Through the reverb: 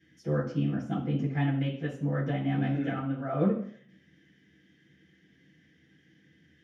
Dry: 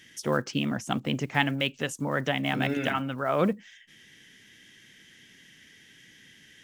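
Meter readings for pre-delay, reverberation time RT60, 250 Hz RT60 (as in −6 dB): 3 ms, 0.60 s, 0.60 s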